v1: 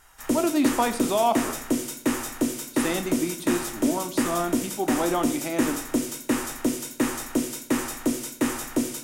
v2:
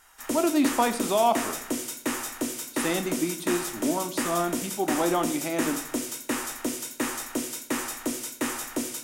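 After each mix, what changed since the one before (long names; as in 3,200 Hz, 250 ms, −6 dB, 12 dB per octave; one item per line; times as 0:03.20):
background: add low-shelf EQ 380 Hz −10 dB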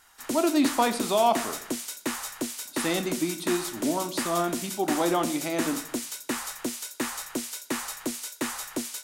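background: send off
master: add parametric band 4,200 Hz +5.5 dB 0.45 octaves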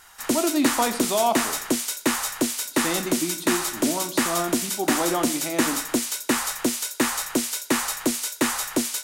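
background +8.0 dB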